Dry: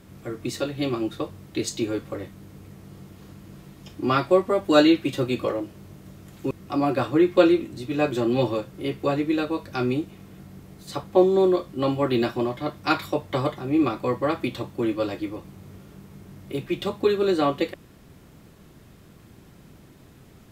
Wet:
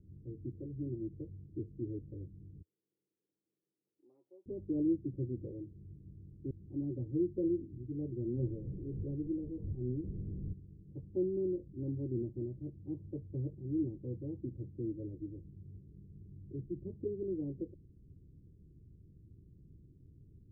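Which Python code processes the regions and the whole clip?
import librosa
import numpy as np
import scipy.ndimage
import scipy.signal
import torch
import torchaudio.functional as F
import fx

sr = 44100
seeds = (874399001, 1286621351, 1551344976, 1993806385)

y = fx.chain(x, sr, fx.highpass(hz=1000.0, slope=12),
    fx.tilt_eq(slope=4.5), at=(2.62, 4.46))
y = fx.chain(y, sr, fx.delta_mod(bps=16000, step_db=-22.5),
    fx.lowpass(hz=1100.0, slope=12),
    fx.band_widen(depth_pct=40), at=(8.24, 10.53))
y = scipy.signal.sosfilt(scipy.signal.cheby2(4, 70, 1300.0, 'lowpass', fs=sr, output='sos'), y)
y = fx.peak_eq(y, sr, hz=87.0, db=2.5, octaves=0.77)
y = y + 0.57 * np.pad(y, (int(2.2 * sr / 1000.0), 0))[:len(y)]
y = y * librosa.db_to_amplitude(-8.0)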